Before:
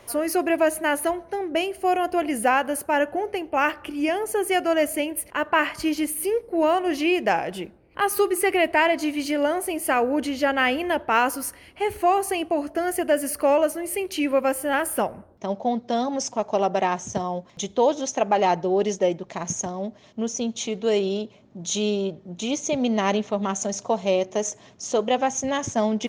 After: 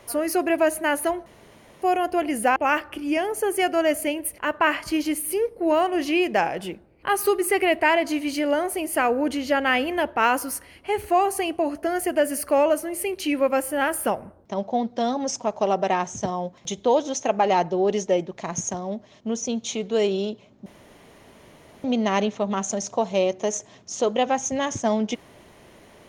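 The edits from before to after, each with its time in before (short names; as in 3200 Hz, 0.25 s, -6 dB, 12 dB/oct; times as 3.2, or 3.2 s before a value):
1.26–1.82 room tone
2.56–3.48 cut
21.58–22.76 room tone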